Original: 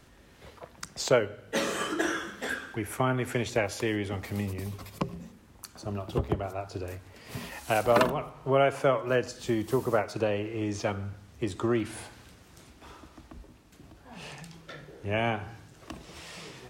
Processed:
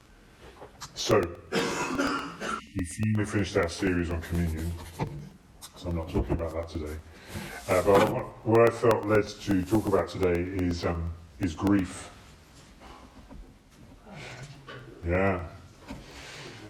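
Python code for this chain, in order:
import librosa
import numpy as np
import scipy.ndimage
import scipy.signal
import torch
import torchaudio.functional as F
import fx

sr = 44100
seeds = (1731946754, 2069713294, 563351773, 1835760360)

y = fx.pitch_bins(x, sr, semitones=-3.0)
y = fx.spec_erase(y, sr, start_s=2.6, length_s=0.57, low_hz=320.0, high_hz=1800.0)
y = fx.buffer_crackle(y, sr, first_s=0.99, period_s=0.12, block=64, kind='repeat')
y = F.gain(torch.from_numpy(y), 4.0).numpy()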